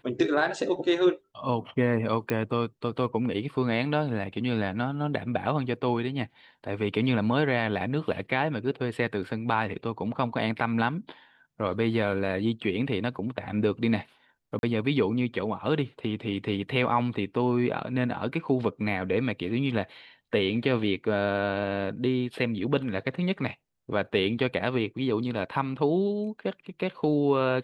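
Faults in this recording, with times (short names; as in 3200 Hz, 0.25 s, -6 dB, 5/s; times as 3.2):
2.3 pop -15 dBFS
14.59–14.63 gap 41 ms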